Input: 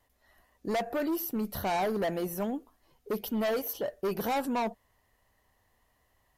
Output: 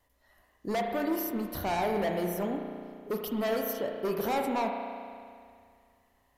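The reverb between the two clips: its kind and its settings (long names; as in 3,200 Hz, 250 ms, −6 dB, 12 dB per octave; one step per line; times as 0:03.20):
spring reverb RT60 2.2 s, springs 34 ms, chirp 45 ms, DRR 2.5 dB
level −1 dB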